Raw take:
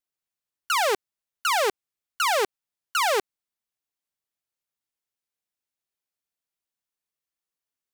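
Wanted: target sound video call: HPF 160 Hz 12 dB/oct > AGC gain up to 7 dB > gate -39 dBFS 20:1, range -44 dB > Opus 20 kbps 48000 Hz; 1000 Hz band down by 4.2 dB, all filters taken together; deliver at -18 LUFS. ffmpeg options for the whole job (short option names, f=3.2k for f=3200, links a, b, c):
-af "highpass=160,equalizer=f=1k:t=o:g=-5.5,dynaudnorm=m=7dB,agate=range=-44dB:threshold=-39dB:ratio=20,volume=9dB" -ar 48000 -c:a libopus -b:a 20k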